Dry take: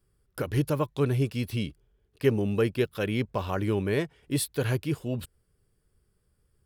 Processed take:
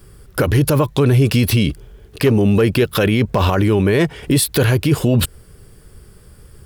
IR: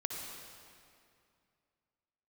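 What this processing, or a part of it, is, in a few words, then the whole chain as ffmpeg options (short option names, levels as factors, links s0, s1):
loud club master: -af "acompressor=threshold=0.02:ratio=1.5,asoftclip=type=hard:threshold=0.0891,alimiter=level_in=44.7:limit=0.891:release=50:level=0:latency=1,volume=0.501"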